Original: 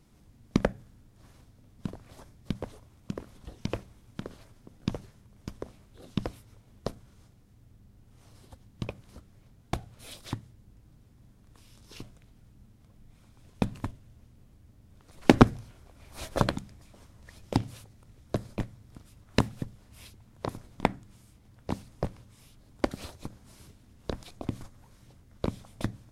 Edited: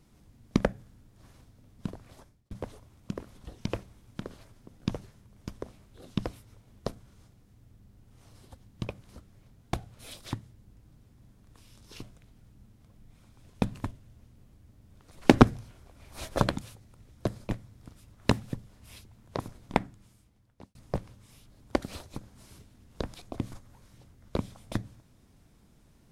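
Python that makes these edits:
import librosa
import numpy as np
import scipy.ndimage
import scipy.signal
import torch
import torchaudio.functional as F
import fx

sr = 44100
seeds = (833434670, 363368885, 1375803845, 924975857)

y = fx.edit(x, sr, fx.fade_out_span(start_s=2.05, length_s=0.46),
    fx.cut(start_s=16.61, length_s=1.09),
    fx.fade_out_span(start_s=20.81, length_s=1.03), tone=tone)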